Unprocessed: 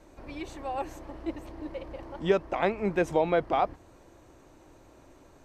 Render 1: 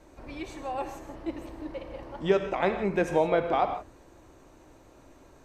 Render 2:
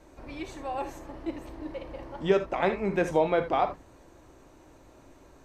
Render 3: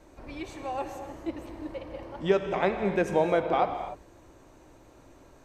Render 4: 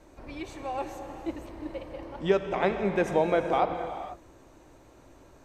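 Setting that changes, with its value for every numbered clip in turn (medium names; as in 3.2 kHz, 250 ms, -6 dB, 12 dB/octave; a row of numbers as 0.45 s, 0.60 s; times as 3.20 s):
gated-style reverb, gate: 190 ms, 100 ms, 320 ms, 520 ms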